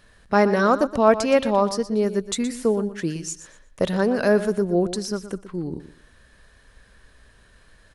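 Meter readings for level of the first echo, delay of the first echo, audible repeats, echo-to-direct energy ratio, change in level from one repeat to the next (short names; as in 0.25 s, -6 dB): -13.0 dB, 0.12 s, 2, -13.0 dB, -13.0 dB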